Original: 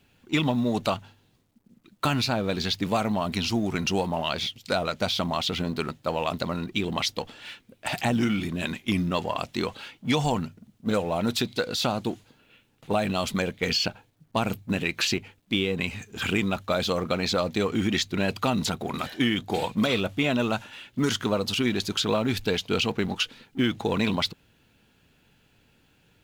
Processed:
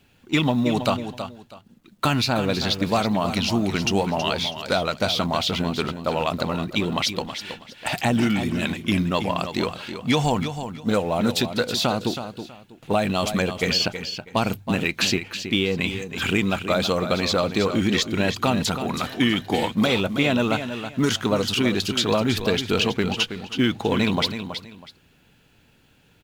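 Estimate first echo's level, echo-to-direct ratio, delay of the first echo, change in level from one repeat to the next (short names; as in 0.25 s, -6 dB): -9.5 dB, -9.5 dB, 0.323 s, -12.5 dB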